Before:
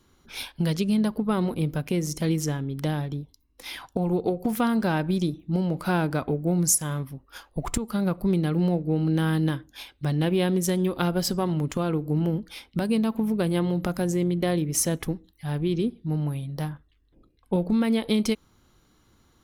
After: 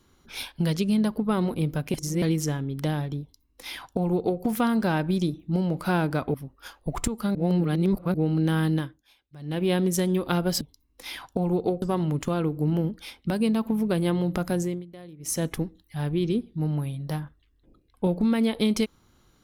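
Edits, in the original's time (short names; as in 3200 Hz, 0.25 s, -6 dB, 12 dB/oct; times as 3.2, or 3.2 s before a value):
1.94–2.22 reverse
3.21–4.42 copy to 11.31
6.34–7.04 cut
8.05–8.84 reverse
9.42–10.4 dip -19 dB, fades 0.31 s linear
14.07–14.94 dip -19.5 dB, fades 0.27 s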